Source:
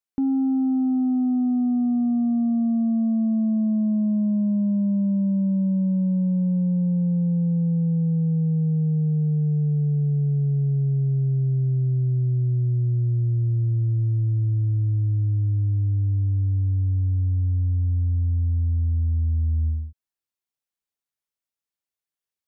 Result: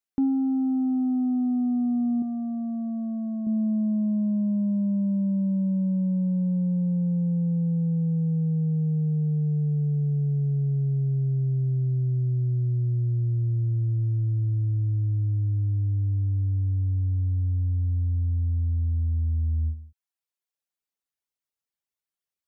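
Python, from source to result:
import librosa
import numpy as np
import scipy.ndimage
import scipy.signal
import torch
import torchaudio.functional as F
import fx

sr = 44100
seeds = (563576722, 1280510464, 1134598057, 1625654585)

y = fx.dereverb_blind(x, sr, rt60_s=0.75)
y = fx.tilt_shelf(y, sr, db=-6.5, hz=770.0, at=(2.22, 3.47))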